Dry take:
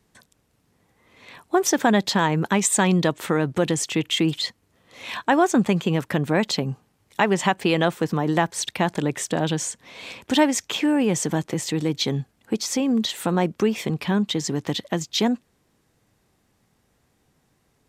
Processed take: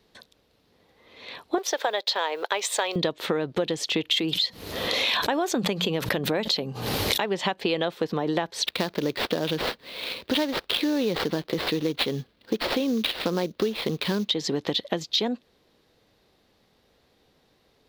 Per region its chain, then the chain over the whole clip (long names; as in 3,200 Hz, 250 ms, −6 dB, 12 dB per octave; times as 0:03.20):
0:01.58–0:02.96: mu-law and A-law mismatch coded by A + high-pass filter 470 Hz 24 dB per octave
0:04.11–0:07.26: high-shelf EQ 8,200 Hz +9.5 dB + mains-hum notches 60/120/180 Hz + background raised ahead of every attack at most 35 dB per second
0:08.66–0:14.29: parametric band 780 Hz −7.5 dB 0.44 octaves + sample-rate reduction 6,400 Hz, jitter 20%
whole clip: octave-band graphic EQ 125/500/4,000/8,000 Hz −5/+7/+12/−10 dB; downward compressor, threshold −22 dBFS